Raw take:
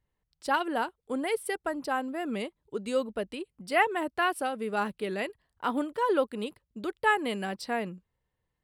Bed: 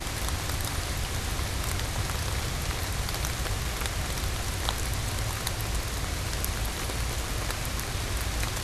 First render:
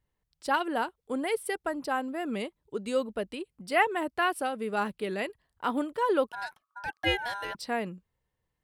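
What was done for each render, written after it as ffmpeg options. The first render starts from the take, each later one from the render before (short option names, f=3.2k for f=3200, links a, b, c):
-filter_complex "[0:a]asettb=1/sr,asplit=3[a][b][c];[a]atrim=end=6.294[d];[b]atrim=start=6.29:end=7.55,asetpts=PTS-STARTPTS,afade=t=in:d=0.004:c=qsin,afade=t=out:st=1.256:d=0.004:c=qsin,aeval=exprs='val(0)*sin(2*PI*1200*n/s)':c=same[e];[c]atrim=start=7.546[f];[d][e]acrossfade=d=0.004:c1=hsin:c2=qsin[g];[g][f]acrossfade=d=0.004:c1=qsin:c2=hsin"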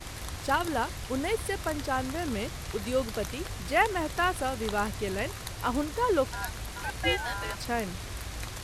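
-filter_complex "[1:a]volume=-8dB[a];[0:a][a]amix=inputs=2:normalize=0"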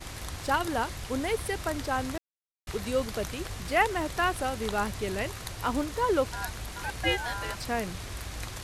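-filter_complex "[0:a]asplit=3[a][b][c];[a]atrim=end=2.18,asetpts=PTS-STARTPTS,afade=t=out:st=2.176:d=0.004:c=hsin[d];[b]atrim=start=2.18:end=2.67,asetpts=PTS-STARTPTS,volume=0[e];[c]atrim=start=2.67,asetpts=PTS-STARTPTS,afade=t=in:d=0.004:c=hsin[f];[d][e][f]concat=n=3:v=0:a=1"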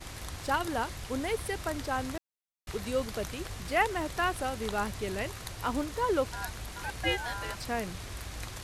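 -af "volume=-2.5dB"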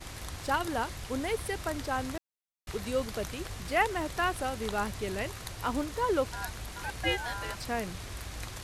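-af anull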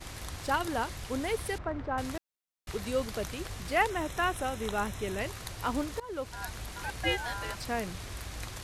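-filter_complex "[0:a]asettb=1/sr,asplit=3[a][b][c];[a]atrim=end=1.584[d];[b]atrim=start=1.58:end=1.98,asetpts=PTS-STARTPTS,afade=t=in:d=0.004:c=qsin,afade=t=out:st=0.396:d=0.004:c=qsin,lowpass=1.5k[e];[c]atrim=start=1.976[f];[d][e]acrossfade=d=0.004:c1=hsin:c2=qsin[g];[g][f]acrossfade=d=0.004:c1=qsin:c2=hsin,asettb=1/sr,asplit=3[h][i][j];[h]atrim=end=3.904[k];[i]atrim=start=3.9:end=5.2,asetpts=PTS-STARTPTS,afade=t=in:d=0.004:c=qsin,afade=t=out:st=1.296:d=0.004:c=qsin,asuperstop=centerf=4600:order=4:qfactor=5.2[l];[j]atrim=start=5.196[m];[k][l]acrossfade=d=0.004:c1=hsin:c2=qsin[n];[n][m]acrossfade=d=0.004:c1=qsin:c2=hsin,asplit=2[o][p];[o]atrim=end=6,asetpts=PTS-STARTPTS,afade=t=out:st=5.996:d=0.004:c=hsin:silence=0.0841395[q];[p]atrim=start=6,asetpts=PTS-STARTPTS,afade=t=in:d=0.55:silence=0.0841395[r];[q][r]concat=n=2:v=0:a=1"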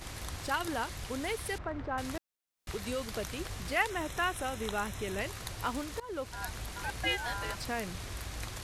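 -filter_complex "[0:a]acrossover=split=1200[a][b];[a]alimiter=level_in=4.5dB:limit=-24dB:level=0:latency=1:release=186,volume=-4.5dB[c];[c][b]amix=inputs=2:normalize=0,acompressor=mode=upward:threshold=-50dB:ratio=2.5"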